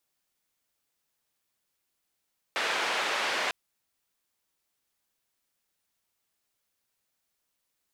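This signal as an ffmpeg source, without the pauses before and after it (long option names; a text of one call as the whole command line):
ffmpeg -f lavfi -i "anoisesrc=color=white:duration=0.95:sample_rate=44100:seed=1,highpass=frequency=480,lowpass=frequency=2600,volume=-14.9dB" out.wav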